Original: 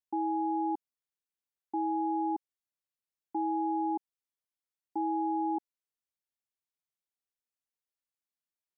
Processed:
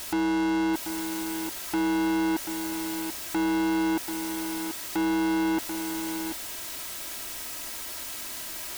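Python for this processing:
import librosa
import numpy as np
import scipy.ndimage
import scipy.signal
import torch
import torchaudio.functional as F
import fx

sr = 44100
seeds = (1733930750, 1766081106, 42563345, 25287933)

y = x + 0.5 * 10.0 ** (-46.5 / 20.0) * np.sign(x)
y = y + 0.57 * np.pad(y, (int(3.1 * sr / 1000.0), 0))[:len(y)]
y = fx.leveller(y, sr, passes=5)
y = y + 10.0 ** (-8.0 / 20.0) * np.pad(y, (int(736 * sr / 1000.0), 0))[:len(y)]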